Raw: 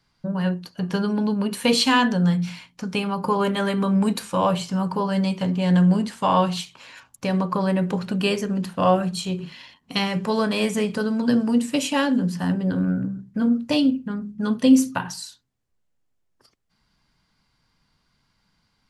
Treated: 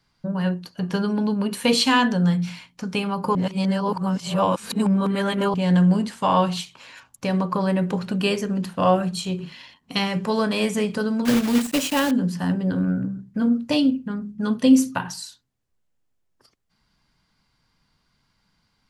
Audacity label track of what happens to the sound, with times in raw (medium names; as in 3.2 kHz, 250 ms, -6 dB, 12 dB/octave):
3.350000	5.540000	reverse
11.250000	12.120000	block-companded coder 3-bit